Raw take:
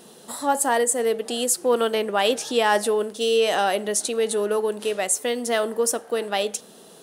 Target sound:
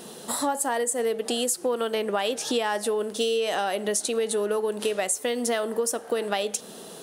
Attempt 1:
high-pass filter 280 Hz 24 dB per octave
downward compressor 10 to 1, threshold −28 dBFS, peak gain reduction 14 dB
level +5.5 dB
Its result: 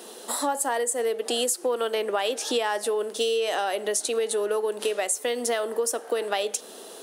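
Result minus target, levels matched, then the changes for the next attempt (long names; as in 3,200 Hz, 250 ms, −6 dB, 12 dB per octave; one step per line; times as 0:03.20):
250 Hz band −5.0 dB
remove: high-pass filter 280 Hz 24 dB per octave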